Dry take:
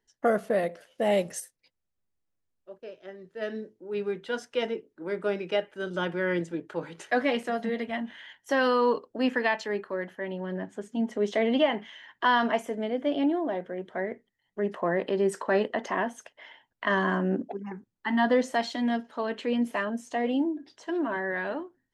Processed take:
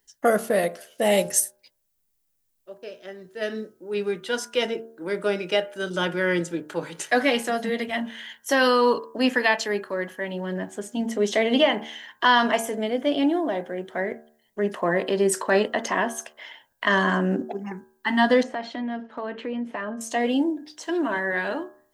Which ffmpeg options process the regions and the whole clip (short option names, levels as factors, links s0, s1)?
-filter_complex "[0:a]asettb=1/sr,asplit=3[s0][s1][s2];[s0]atrim=end=18.434[s3];[s1]atrim=start=18.43:end=20.01,asetpts=PTS-STARTPTS,afade=t=in:d=0.004:c=qsin,afade=t=out:st=1.576:d=0.004:c=qsin,lowpass=1900,acompressor=threshold=0.0282:ratio=4:attack=3.2:release=140:knee=1:detection=peak[s4];[s2]atrim=start=20.006[s5];[s3][s4]acrossfade=d=0.004:c1=hsin:c2=qsin[s6];[s6][s5]acrossfade=d=0.004:c1=qsin:c2=hsin,aemphasis=mode=production:type=75kf,bandreject=f=75.52:t=h:w=4,bandreject=f=151.04:t=h:w=4,bandreject=f=226.56:t=h:w=4,bandreject=f=302.08:t=h:w=4,bandreject=f=377.6:t=h:w=4,bandreject=f=453.12:t=h:w=4,bandreject=f=528.64:t=h:w=4,bandreject=f=604.16:t=h:w=4,bandreject=f=679.68:t=h:w=4,bandreject=f=755.2:t=h:w=4,bandreject=f=830.72:t=h:w=4,bandreject=f=906.24:t=h:w=4,bandreject=f=981.76:t=h:w=4,bandreject=f=1057.28:t=h:w=4,bandreject=f=1132.8:t=h:w=4,bandreject=f=1208.32:t=h:w=4,bandreject=f=1283.84:t=h:w=4,bandreject=f=1359.36:t=h:w=4,bandreject=f=1434.88:t=h:w=4,bandreject=f=1510.4:t=h:w=4,bandreject=f=1585.92:t=h:w=4,bandreject=f=1661.44:t=h:w=4,volume=1.58"